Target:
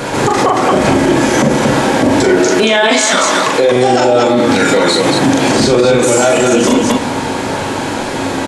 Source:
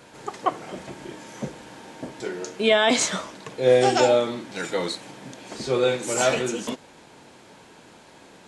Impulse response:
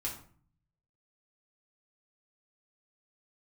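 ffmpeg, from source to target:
-filter_complex "[0:a]asettb=1/sr,asplit=3[a][b][c];[a]atrim=end=2.394[d];[b]atrim=start=2.39:end=3.72,asetpts=PTS-STARTPTS,afade=t=in:d=0.004:c=qsin,afade=t=out:st=1.326:d=0.004:c=qsin,highpass=f=580:p=1[e];[c]atrim=start=3.716[f];[d][e]acrossfade=d=0.004:c1=hsin:c2=qsin[g];[g][f]acrossfade=d=0.004:c1=qsin:c2=hsin,acompressor=threshold=-30dB:ratio=6,aecho=1:1:40.82|227.4:0.708|0.501,asplit=2[h][i];[1:a]atrim=start_sample=2205,asetrate=41895,aresample=44100,lowpass=2k[j];[i][j]afir=irnorm=-1:irlink=0,volume=-4dB[k];[h][k]amix=inputs=2:normalize=0,alimiter=level_in=27dB:limit=-1dB:release=50:level=0:latency=1,volume=-1dB"

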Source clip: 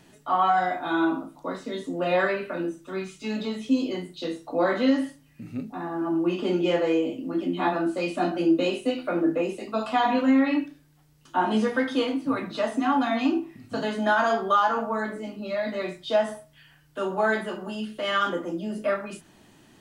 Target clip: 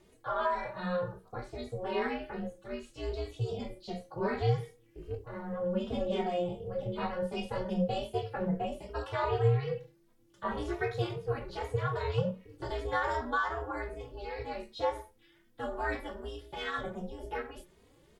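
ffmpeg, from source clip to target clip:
-filter_complex "[0:a]equalizer=f=90:w=0.32:g=6.5,aeval=exprs='val(0)*sin(2*PI*160*n/s)':c=same,asetrate=48000,aresample=44100,asplit=2[a][b];[b]adelay=2.9,afreqshift=2.6[c];[a][c]amix=inputs=2:normalize=1,volume=-5dB"

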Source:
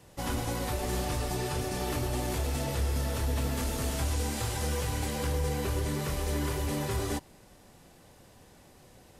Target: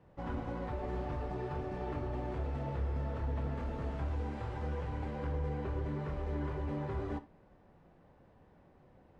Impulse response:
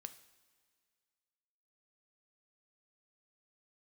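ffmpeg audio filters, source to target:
-filter_complex "[0:a]lowpass=1.5k[a];[1:a]atrim=start_sample=2205,atrim=end_sample=3528[b];[a][b]afir=irnorm=-1:irlink=0"

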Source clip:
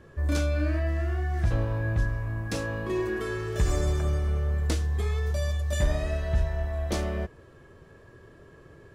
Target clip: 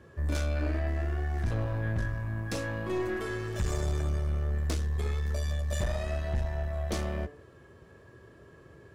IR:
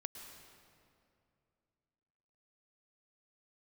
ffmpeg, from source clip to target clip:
-af "highpass=f=51:w=0.5412,highpass=f=51:w=1.3066,bandreject=f=146:t=h:w=4,bandreject=f=292:t=h:w=4,bandreject=f=438:t=h:w=4,bandreject=f=584:t=h:w=4,bandreject=f=730:t=h:w=4,bandreject=f=876:t=h:w=4,bandreject=f=1.022k:t=h:w=4,bandreject=f=1.168k:t=h:w=4,bandreject=f=1.314k:t=h:w=4,bandreject=f=1.46k:t=h:w=4,bandreject=f=1.606k:t=h:w=4,bandreject=f=1.752k:t=h:w=4,bandreject=f=1.898k:t=h:w=4,bandreject=f=2.044k:t=h:w=4,bandreject=f=2.19k:t=h:w=4,bandreject=f=2.336k:t=h:w=4,bandreject=f=2.482k:t=h:w=4,bandreject=f=2.628k:t=h:w=4,bandreject=f=2.774k:t=h:w=4,bandreject=f=2.92k:t=h:w=4,bandreject=f=3.066k:t=h:w=4,bandreject=f=3.212k:t=h:w=4,bandreject=f=3.358k:t=h:w=4,bandreject=f=3.504k:t=h:w=4,bandreject=f=3.65k:t=h:w=4,bandreject=f=3.796k:t=h:w=4,bandreject=f=3.942k:t=h:w=4,bandreject=f=4.088k:t=h:w=4,aeval=exprs='(tanh(15.8*val(0)+0.45)-tanh(0.45))/15.8':c=same"

